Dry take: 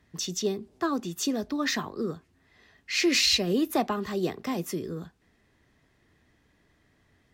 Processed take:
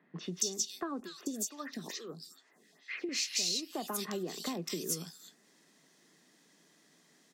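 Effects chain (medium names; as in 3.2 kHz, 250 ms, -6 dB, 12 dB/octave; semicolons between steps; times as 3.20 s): elliptic high-pass 160 Hz; peaking EQ 6.5 kHz +9.5 dB 1.7 oct; bands offset in time lows, highs 230 ms, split 2.2 kHz; compression 12:1, threshold -34 dBFS, peak gain reduction 20 dB; treble shelf 4.4 kHz +7 dB; 1.00–3.09 s: lamp-driven phase shifter 2.3 Hz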